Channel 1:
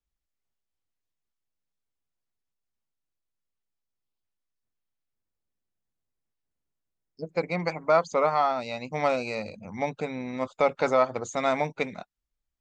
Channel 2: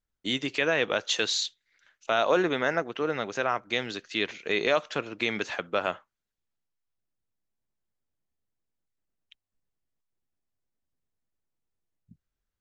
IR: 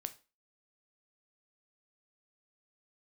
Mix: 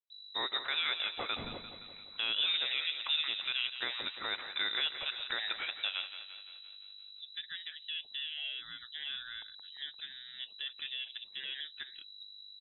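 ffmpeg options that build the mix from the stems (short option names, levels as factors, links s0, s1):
-filter_complex "[0:a]lowshelf=f=280:g=-11.5,alimiter=limit=0.0944:level=0:latency=1:release=37,volume=0.266,asplit=3[s0][s1][s2];[s1]volume=0.211[s3];[1:a]alimiter=limit=0.075:level=0:latency=1:release=330,aeval=exprs='val(0)+0.00282*(sin(2*PI*50*n/s)+sin(2*PI*2*50*n/s)/2+sin(2*PI*3*50*n/s)/3+sin(2*PI*4*50*n/s)/4+sin(2*PI*5*50*n/s)/5)':c=same,adelay=100,volume=1.12,asplit=2[s4][s5];[s5]volume=0.299[s6];[s2]apad=whole_len=560268[s7];[s4][s7]sidechaincompress=threshold=0.00316:ratio=8:attack=16:release=114[s8];[2:a]atrim=start_sample=2205[s9];[s3][s9]afir=irnorm=-1:irlink=0[s10];[s6]aecho=0:1:173|346|519|692|865|1038|1211|1384|1557:1|0.58|0.336|0.195|0.113|0.0656|0.0381|0.0221|0.0128[s11];[s0][s8][s10][s11]amix=inputs=4:normalize=0,lowpass=f=3400:t=q:w=0.5098,lowpass=f=3400:t=q:w=0.6013,lowpass=f=3400:t=q:w=0.9,lowpass=f=3400:t=q:w=2.563,afreqshift=-4000"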